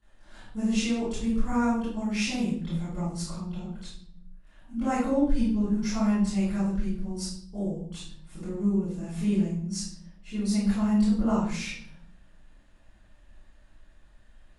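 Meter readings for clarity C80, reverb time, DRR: 5.5 dB, 0.60 s, −16.0 dB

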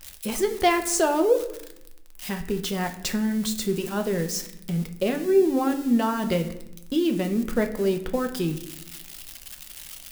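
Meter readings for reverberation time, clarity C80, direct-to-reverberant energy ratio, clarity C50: 0.85 s, 14.5 dB, 5.0 dB, 11.5 dB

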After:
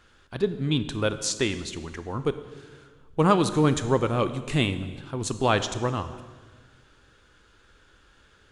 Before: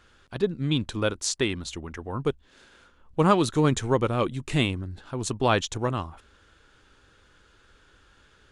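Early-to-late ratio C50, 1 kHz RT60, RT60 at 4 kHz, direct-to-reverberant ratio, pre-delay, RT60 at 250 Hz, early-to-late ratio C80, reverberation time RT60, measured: 12.5 dB, 1.4 s, 1.4 s, 11.0 dB, 26 ms, 1.8 s, 13.5 dB, 1.5 s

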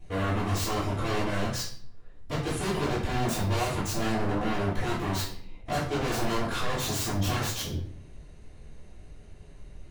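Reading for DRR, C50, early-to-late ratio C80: −13.0 dB, 4.5 dB, 8.5 dB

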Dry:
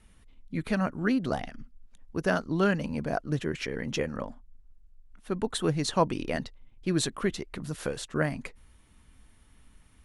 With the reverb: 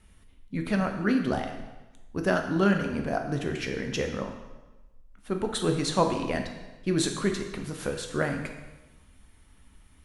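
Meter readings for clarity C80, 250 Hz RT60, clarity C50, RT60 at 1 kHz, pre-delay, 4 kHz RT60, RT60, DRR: 8.5 dB, 1.2 s, 6.5 dB, 1.1 s, 4 ms, 1.0 s, 1.1 s, 3.5 dB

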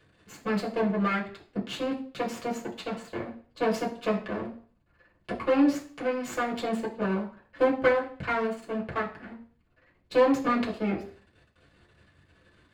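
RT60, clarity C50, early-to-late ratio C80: 0.45 s, 10.5 dB, 15.5 dB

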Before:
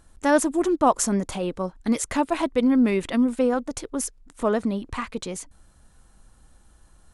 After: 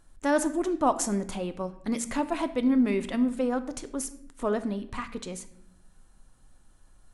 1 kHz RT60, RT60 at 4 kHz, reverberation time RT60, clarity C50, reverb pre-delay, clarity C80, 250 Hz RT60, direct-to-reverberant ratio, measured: 0.60 s, 0.50 s, 0.70 s, 14.0 dB, 3 ms, 17.0 dB, 1.2 s, 10.0 dB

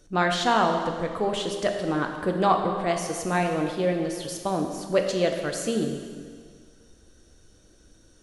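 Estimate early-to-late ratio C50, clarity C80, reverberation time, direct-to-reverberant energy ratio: 5.5 dB, 6.5 dB, 1.8 s, 3.0 dB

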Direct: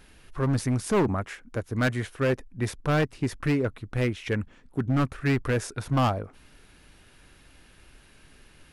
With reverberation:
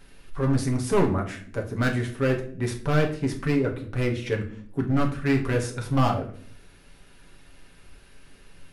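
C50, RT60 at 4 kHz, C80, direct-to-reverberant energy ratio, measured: 10.5 dB, can't be measured, 14.5 dB, 0.5 dB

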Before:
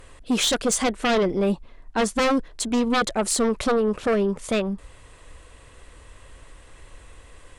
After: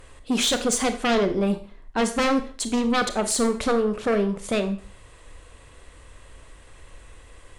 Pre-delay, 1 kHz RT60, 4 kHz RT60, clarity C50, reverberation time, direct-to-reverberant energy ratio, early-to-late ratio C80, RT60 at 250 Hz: 26 ms, 0.45 s, 0.40 s, 12.0 dB, 0.45 s, 8.5 dB, 16.0 dB, 0.40 s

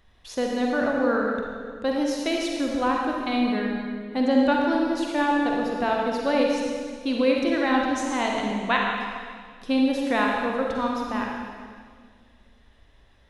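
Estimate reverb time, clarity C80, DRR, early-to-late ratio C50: 1.9 s, 1.5 dB, −1.0 dB, −0.5 dB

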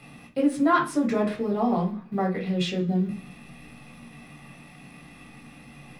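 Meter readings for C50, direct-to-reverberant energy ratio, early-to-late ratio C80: 10.5 dB, −1.5 dB, 17.0 dB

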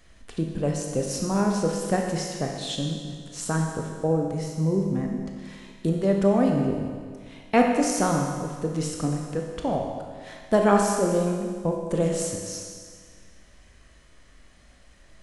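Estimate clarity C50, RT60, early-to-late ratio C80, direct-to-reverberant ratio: 2.5 dB, 1.8 s, 4.0 dB, 1.0 dB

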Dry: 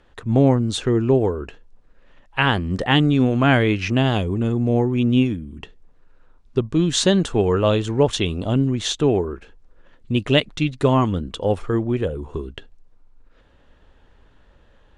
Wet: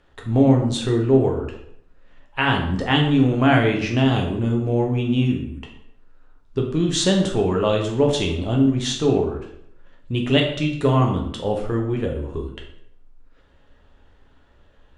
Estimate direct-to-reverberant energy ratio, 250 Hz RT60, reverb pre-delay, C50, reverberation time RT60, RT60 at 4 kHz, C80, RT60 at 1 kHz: 1.0 dB, 0.70 s, 7 ms, 6.5 dB, 0.70 s, 0.55 s, 9.5 dB, 0.65 s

